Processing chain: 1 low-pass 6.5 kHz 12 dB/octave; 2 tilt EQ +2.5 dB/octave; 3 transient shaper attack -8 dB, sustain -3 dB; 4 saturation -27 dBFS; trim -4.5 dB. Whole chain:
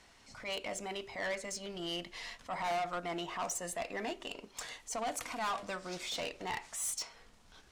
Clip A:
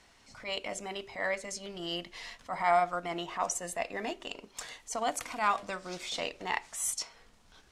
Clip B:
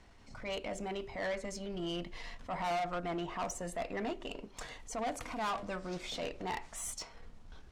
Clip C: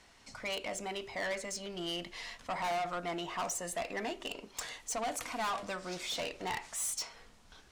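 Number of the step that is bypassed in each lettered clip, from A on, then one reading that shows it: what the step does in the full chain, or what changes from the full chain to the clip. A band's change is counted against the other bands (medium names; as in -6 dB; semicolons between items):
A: 4, distortion -7 dB; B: 2, 125 Hz band +6.5 dB; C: 3, momentary loudness spread change -2 LU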